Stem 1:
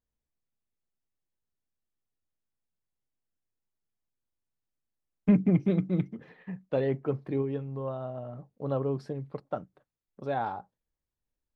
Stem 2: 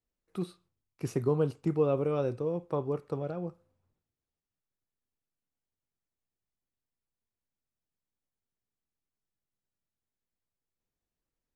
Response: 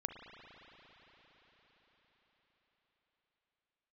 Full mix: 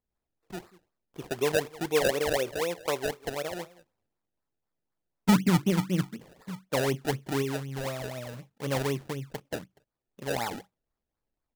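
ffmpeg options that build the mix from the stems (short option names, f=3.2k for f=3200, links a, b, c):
-filter_complex "[0:a]bandreject=f=730:w=13,volume=0.5dB[a];[1:a]highpass=f=420:p=1,adynamicequalizer=threshold=0.00708:dfrequency=680:dqfactor=0.78:tfrequency=680:tqfactor=0.78:attack=5:release=100:ratio=0.375:range=3.5:mode=boostabove:tftype=bell,adelay=150,volume=0dB,asplit=2[b][c];[c]volume=-20.5dB,aecho=0:1:189:1[d];[a][b][d]amix=inputs=3:normalize=0,acrusher=samples=28:mix=1:aa=0.000001:lfo=1:lforange=28:lforate=4"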